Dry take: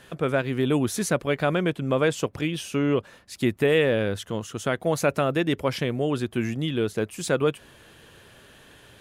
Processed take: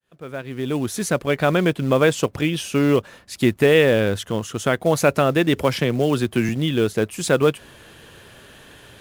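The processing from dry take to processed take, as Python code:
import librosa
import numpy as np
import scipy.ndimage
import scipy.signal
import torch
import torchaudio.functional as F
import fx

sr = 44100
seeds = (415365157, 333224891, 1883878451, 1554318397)

p1 = fx.fade_in_head(x, sr, length_s=1.59)
p2 = fx.quant_float(p1, sr, bits=2)
p3 = p1 + (p2 * 10.0 ** (-3.0 / 20.0))
p4 = fx.band_squash(p3, sr, depth_pct=40, at=(5.56, 6.49))
y = p4 * 10.0 ** (1.0 / 20.0)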